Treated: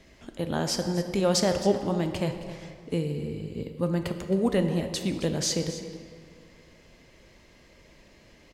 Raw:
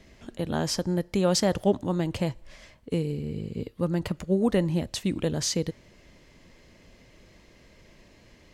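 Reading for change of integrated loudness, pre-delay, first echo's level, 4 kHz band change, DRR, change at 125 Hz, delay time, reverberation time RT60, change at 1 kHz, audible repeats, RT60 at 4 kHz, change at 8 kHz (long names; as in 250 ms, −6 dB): −0.5 dB, 7 ms, −14.5 dB, +1.0 dB, 6.0 dB, −1.0 dB, 267 ms, 2.2 s, +1.0 dB, 1, 1.3 s, +0.5 dB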